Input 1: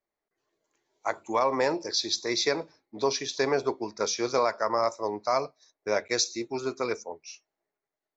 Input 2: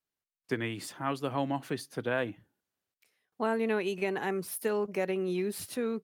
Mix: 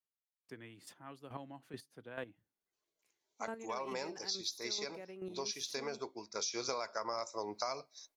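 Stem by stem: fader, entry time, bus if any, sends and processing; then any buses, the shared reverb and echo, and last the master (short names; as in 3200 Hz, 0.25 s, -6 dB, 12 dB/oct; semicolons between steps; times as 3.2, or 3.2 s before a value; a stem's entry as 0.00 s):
6.32 s -14.5 dB -> 6.69 s -2 dB, 2.35 s, no send, high shelf 2200 Hz +11.5 dB; notch 1800 Hz, Q 8.7
-9.5 dB, 0.00 s, no send, chopper 2.3 Hz, depth 65%, duty 15%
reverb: off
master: compressor 8:1, threshold -35 dBFS, peak gain reduction 20.5 dB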